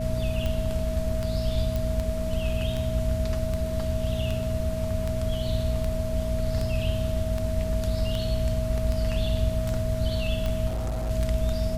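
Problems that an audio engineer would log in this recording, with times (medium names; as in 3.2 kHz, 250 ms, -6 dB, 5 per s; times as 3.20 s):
hum 60 Hz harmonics 4 -31 dBFS
tick 78 rpm -17 dBFS
whine 640 Hz -31 dBFS
1.76 s: pop
10.67–11.11 s: clipped -25.5 dBFS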